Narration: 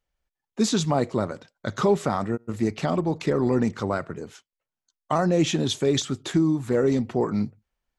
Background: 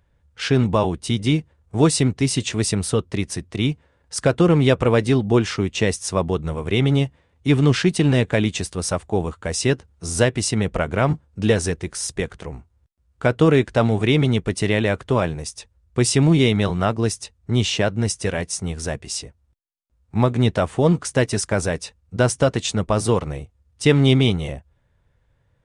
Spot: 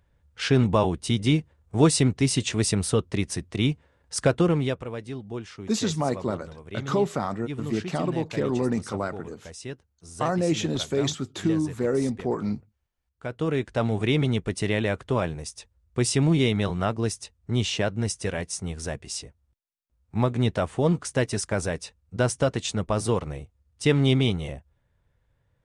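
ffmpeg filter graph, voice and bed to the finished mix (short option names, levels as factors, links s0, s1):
-filter_complex "[0:a]adelay=5100,volume=0.708[s0];[1:a]volume=2.99,afade=t=out:st=4.22:d=0.63:silence=0.177828,afade=t=in:st=13.17:d=0.85:silence=0.251189[s1];[s0][s1]amix=inputs=2:normalize=0"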